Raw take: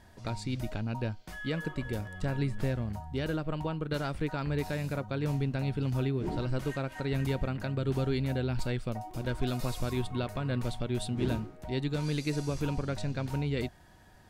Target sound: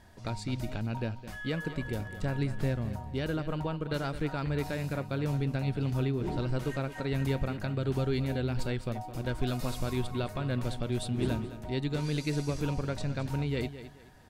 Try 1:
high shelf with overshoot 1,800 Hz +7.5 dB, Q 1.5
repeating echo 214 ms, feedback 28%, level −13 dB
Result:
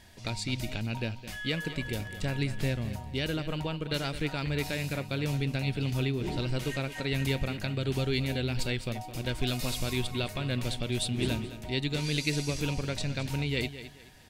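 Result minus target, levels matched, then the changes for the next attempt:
4,000 Hz band +8.0 dB
remove: high shelf with overshoot 1,800 Hz +7.5 dB, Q 1.5

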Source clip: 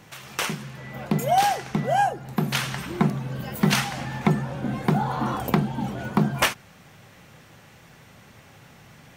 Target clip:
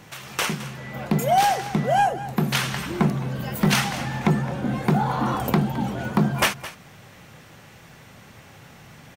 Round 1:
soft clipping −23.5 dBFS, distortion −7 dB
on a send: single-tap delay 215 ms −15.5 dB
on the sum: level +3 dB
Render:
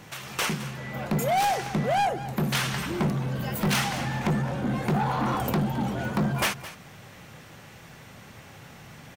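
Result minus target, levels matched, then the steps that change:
soft clipping: distortion +10 dB
change: soft clipping −13.5 dBFS, distortion −17 dB

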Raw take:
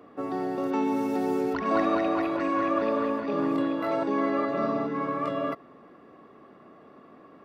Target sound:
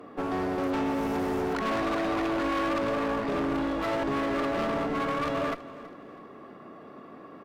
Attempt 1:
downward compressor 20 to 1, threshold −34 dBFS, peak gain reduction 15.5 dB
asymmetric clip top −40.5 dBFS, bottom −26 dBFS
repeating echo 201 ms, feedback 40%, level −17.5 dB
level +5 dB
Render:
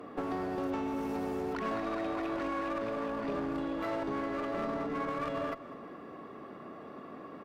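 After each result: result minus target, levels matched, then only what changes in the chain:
downward compressor: peak gain reduction +10 dB; echo 124 ms early
change: downward compressor 20 to 1, threshold −23.5 dBFS, peak gain reduction 5.5 dB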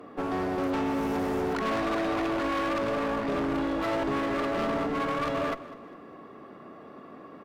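echo 124 ms early
change: repeating echo 325 ms, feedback 40%, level −17.5 dB

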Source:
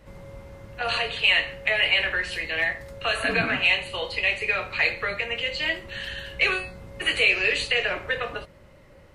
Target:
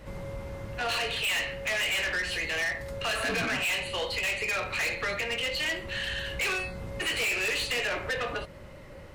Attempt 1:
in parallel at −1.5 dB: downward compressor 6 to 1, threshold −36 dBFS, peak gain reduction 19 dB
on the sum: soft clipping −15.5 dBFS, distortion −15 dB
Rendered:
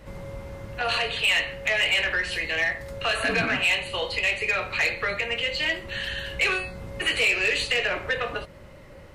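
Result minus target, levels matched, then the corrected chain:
soft clipping: distortion −9 dB
in parallel at −1.5 dB: downward compressor 6 to 1, threshold −36 dBFS, peak gain reduction 19 dB
on the sum: soft clipping −26 dBFS, distortion −6 dB

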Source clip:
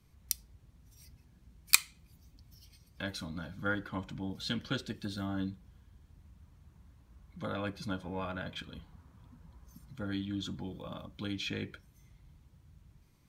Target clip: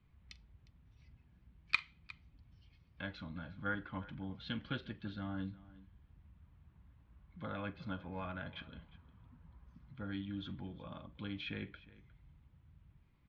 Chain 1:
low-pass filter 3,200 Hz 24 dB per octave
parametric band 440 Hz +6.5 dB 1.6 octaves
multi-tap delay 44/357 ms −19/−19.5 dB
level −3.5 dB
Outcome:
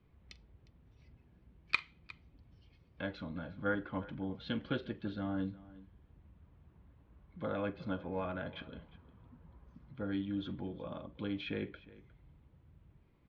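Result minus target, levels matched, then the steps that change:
500 Hz band +5.5 dB
change: parametric band 440 Hz −4 dB 1.6 octaves

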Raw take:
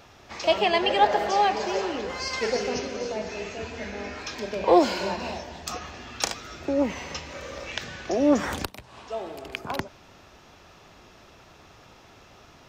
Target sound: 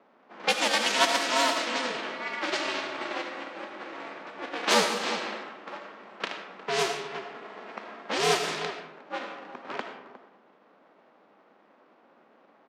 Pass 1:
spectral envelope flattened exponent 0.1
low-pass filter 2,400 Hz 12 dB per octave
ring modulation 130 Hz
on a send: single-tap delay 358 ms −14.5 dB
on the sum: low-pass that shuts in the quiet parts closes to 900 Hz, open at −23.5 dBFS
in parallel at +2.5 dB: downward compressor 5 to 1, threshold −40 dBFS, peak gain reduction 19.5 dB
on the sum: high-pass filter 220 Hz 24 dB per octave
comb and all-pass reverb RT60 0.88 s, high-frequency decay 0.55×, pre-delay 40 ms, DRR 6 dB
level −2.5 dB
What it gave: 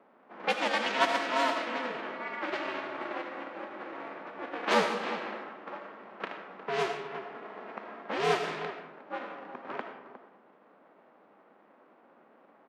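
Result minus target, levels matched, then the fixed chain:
downward compressor: peak gain reduction +7 dB; 4,000 Hz band −4.5 dB
spectral envelope flattened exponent 0.1
low-pass filter 5,000 Hz 12 dB per octave
ring modulation 130 Hz
on a send: single-tap delay 358 ms −14.5 dB
on the sum: low-pass that shuts in the quiet parts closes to 900 Hz, open at −23.5 dBFS
in parallel at +2.5 dB: downward compressor 5 to 1, threshold −30 dBFS, peak gain reduction 12.5 dB
on the sum: high-pass filter 220 Hz 24 dB per octave
comb and all-pass reverb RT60 0.88 s, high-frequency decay 0.55×, pre-delay 40 ms, DRR 6 dB
level −2.5 dB

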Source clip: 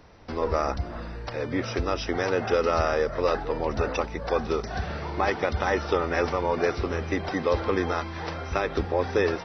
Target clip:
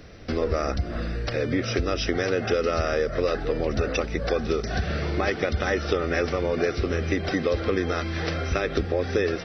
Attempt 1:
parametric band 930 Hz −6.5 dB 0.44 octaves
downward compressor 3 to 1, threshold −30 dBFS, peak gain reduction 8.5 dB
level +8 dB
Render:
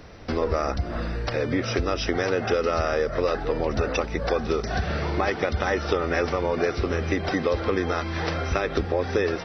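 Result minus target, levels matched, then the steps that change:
1,000 Hz band +3.0 dB
change: parametric band 930 Hz −18 dB 0.44 octaves

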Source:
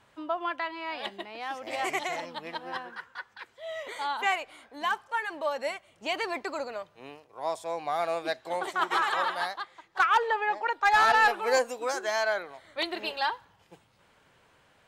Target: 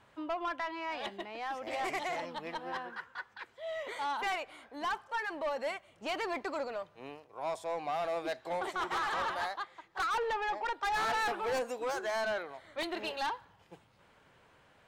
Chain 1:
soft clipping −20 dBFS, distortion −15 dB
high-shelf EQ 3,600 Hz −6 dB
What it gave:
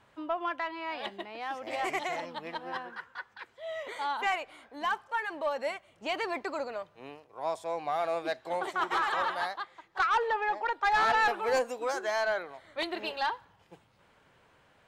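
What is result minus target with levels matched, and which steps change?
soft clipping: distortion −8 dB
change: soft clipping −29 dBFS, distortion −6 dB

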